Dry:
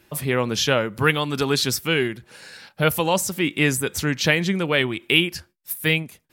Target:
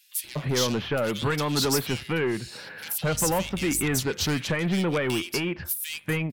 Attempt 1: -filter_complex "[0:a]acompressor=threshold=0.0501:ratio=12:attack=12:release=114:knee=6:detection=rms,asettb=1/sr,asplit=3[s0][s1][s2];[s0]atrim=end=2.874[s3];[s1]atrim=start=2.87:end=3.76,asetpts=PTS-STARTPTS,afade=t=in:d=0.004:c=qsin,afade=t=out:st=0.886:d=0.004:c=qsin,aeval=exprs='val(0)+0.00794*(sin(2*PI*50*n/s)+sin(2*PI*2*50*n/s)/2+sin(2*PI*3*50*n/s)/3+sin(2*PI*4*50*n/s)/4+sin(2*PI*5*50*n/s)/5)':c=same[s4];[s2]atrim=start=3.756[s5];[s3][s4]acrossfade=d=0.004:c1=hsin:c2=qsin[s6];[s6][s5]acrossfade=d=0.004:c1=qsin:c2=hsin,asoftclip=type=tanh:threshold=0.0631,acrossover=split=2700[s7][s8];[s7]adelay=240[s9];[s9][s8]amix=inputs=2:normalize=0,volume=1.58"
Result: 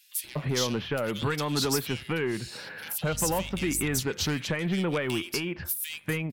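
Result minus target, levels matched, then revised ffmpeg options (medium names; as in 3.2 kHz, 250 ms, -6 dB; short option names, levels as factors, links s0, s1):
compression: peak gain reduction +6 dB
-filter_complex "[0:a]acompressor=threshold=0.106:ratio=12:attack=12:release=114:knee=6:detection=rms,asettb=1/sr,asplit=3[s0][s1][s2];[s0]atrim=end=2.874[s3];[s1]atrim=start=2.87:end=3.76,asetpts=PTS-STARTPTS,afade=t=in:d=0.004:c=qsin,afade=t=out:st=0.886:d=0.004:c=qsin,aeval=exprs='val(0)+0.00794*(sin(2*PI*50*n/s)+sin(2*PI*2*50*n/s)/2+sin(2*PI*3*50*n/s)/3+sin(2*PI*4*50*n/s)/4+sin(2*PI*5*50*n/s)/5)':c=same[s4];[s2]atrim=start=3.756[s5];[s3][s4]acrossfade=d=0.004:c1=hsin:c2=qsin[s6];[s6][s5]acrossfade=d=0.004:c1=qsin:c2=hsin,asoftclip=type=tanh:threshold=0.0631,acrossover=split=2700[s7][s8];[s7]adelay=240[s9];[s9][s8]amix=inputs=2:normalize=0,volume=1.58"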